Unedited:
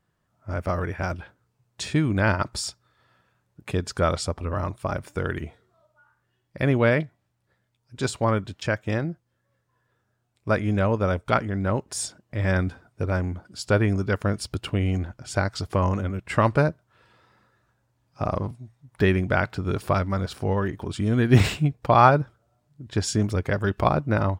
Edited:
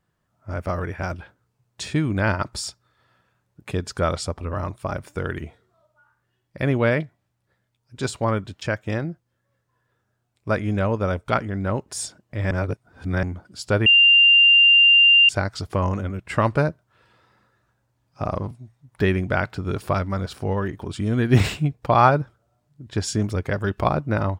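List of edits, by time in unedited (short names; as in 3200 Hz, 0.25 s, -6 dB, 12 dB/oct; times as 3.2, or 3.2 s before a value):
12.51–13.23 reverse
13.86–15.29 bleep 2790 Hz -10 dBFS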